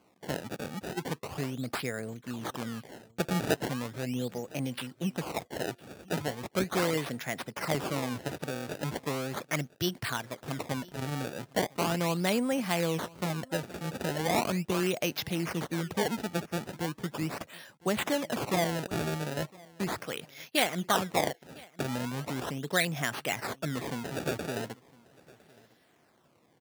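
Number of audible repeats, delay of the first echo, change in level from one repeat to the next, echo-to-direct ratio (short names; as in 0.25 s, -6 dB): 1, 1.008 s, no steady repeat, -24.0 dB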